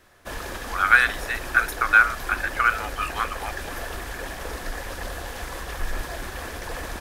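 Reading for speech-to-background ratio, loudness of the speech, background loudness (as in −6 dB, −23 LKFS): 12.0 dB, −21.5 LKFS, −33.5 LKFS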